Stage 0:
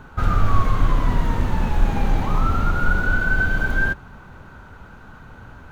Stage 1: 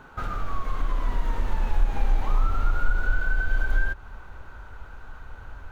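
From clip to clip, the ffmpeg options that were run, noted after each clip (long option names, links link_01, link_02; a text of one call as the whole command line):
ffmpeg -i in.wav -af "bass=frequency=250:gain=-8,treble=frequency=4000:gain=-1,acompressor=threshold=-26dB:ratio=4,asubboost=boost=10.5:cutoff=57,volume=-2.5dB" out.wav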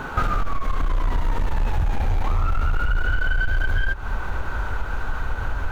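ffmpeg -i in.wav -af "aeval=exprs='0.355*sin(PI/2*2.82*val(0)/0.355)':channel_layout=same,acompressor=threshold=-22dB:ratio=6,volume=4dB" out.wav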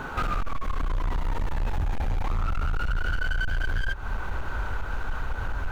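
ffmpeg -i in.wav -af "asoftclip=type=hard:threshold=-18.5dB,volume=-3.5dB" out.wav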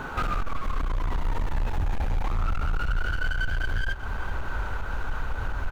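ffmpeg -i in.wav -af "aecho=1:1:390:0.237" out.wav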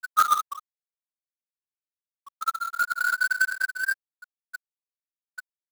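ffmpeg -i in.wav -af "highpass=frequency=1300:width_type=q:width=4.4,afftfilt=real='re*gte(hypot(re,im),0.447)':imag='im*gte(hypot(re,im),0.447)':win_size=1024:overlap=0.75,acrusher=bits=2:mode=log:mix=0:aa=0.000001" out.wav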